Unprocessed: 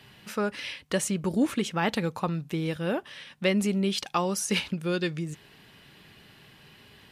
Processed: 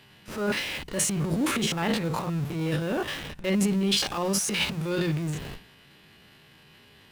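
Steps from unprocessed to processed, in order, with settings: stepped spectrum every 50 ms; transient shaper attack -8 dB, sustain +11 dB; in parallel at -8.5 dB: Schmitt trigger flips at -39 dBFS; on the sum: notches 60/120/180 Hz

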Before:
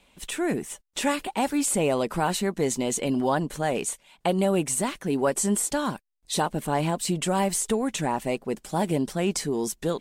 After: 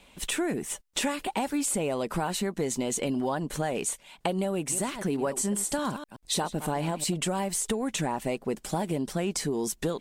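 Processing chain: 4.54–7.14 reverse delay 0.125 s, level -14 dB; compressor, threshold -30 dBFS, peak gain reduction 11.5 dB; soft clip -16.5 dBFS, distortion -32 dB; gain +4.5 dB

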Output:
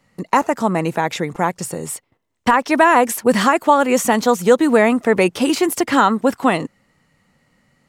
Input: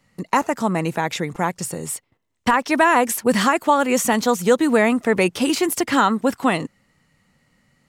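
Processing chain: bell 610 Hz +4 dB 2.9 oct

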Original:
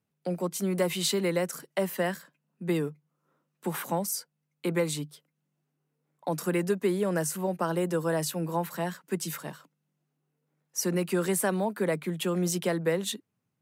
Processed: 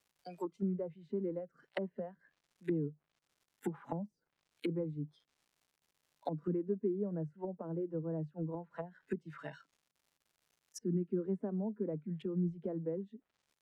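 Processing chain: crackle 230/s -40 dBFS; spectral noise reduction 18 dB; treble ducked by the level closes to 310 Hz, closed at -29.5 dBFS; gain -2.5 dB

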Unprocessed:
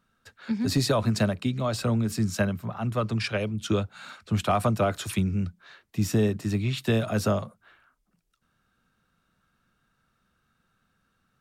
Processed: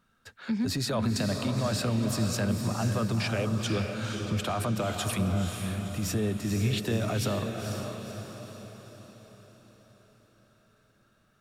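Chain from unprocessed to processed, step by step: limiter -23 dBFS, peak gain reduction 10.5 dB; on a send: diffused feedback echo 0.499 s, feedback 51%, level -5 dB; on the sum: gain +1.5 dB

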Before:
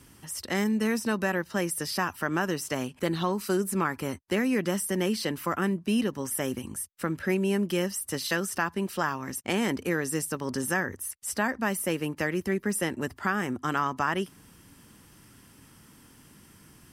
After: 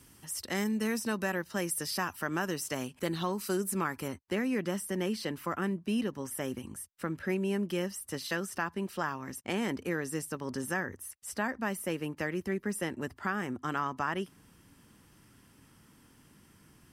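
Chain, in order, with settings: high shelf 4500 Hz +4.5 dB, from 4.08 s -4 dB; gain -5 dB

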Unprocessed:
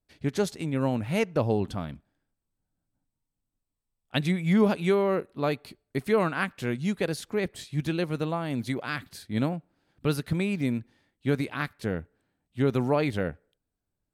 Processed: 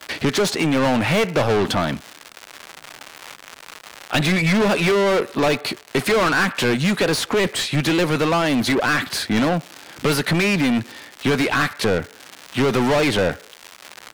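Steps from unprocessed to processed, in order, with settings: crackle 200/s -51 dBFS; overdrive pedal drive 33 dB, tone 4900 Hz, clips at -10.5 dBFS; three-band squash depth 40%

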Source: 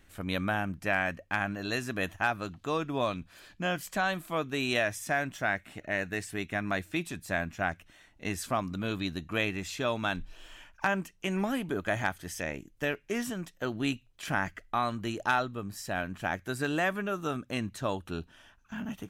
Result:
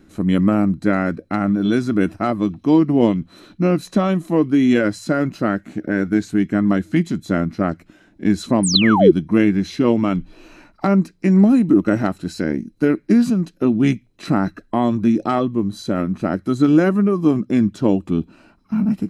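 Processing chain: formant shift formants -3 st; painted sound fall, 8.63–9.11, 330–10000 Hz -24 dBFS; small resonant body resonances 220/310/4000 Hz, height 18 dB, ringing for 30 ms; gain +2 dB

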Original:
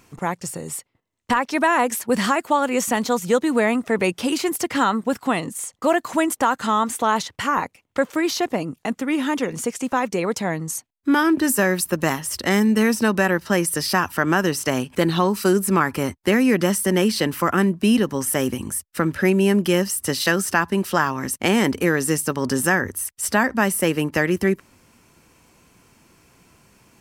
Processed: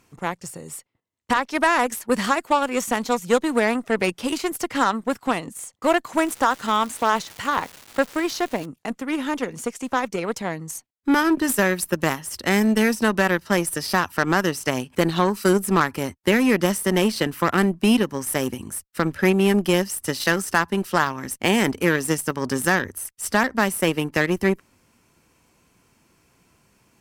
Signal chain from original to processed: added harmonics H 5 -28 dB, 7 -20 dB, 8 -34 dB, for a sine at -3.5 dBFS; 6.16–8.65 crackle 540/s -30 dBFS

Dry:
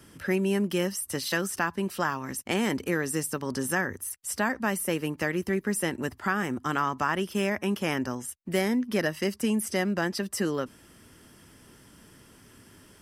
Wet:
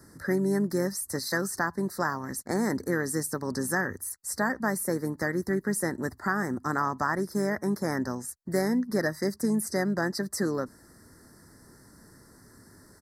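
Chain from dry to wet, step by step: harmoniser -5 st -17 dB; elliptic band-stop 1900–4200 Hz, stop band 80 dB

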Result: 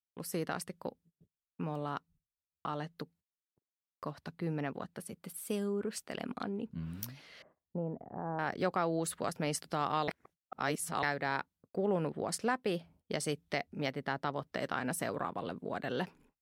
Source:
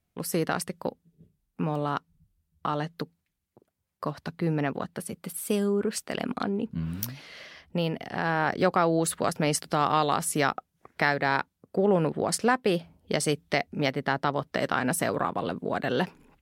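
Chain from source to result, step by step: 7.42–8.39 LPF 1000 Hz 24 dB/oct; 10.08–11.03 reverse; gate -53 dBFS, range -27 dB; gain -9 dB

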